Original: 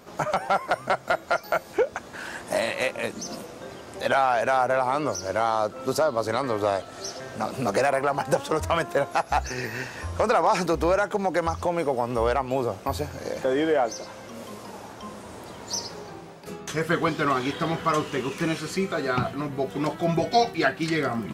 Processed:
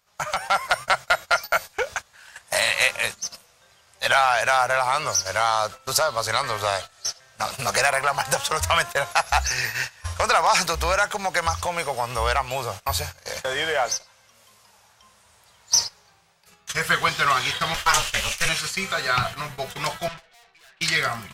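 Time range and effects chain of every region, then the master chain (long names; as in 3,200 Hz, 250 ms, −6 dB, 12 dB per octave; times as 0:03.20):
0:17.74–0:18.49: high-shelf EQ 2,200 Hz +9.5 dB + ring modulation 170 Hz
0:20.08–0:20.81: band-pass filter 230–3,000 Hz + tube saturation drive 37 dB, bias 0.4
whole clip: noise gate −32 dBFS, range −19 dB; guitar amp tone stack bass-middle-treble 10-0-10; automatic gain control gain up to 5 dB; level +8 dB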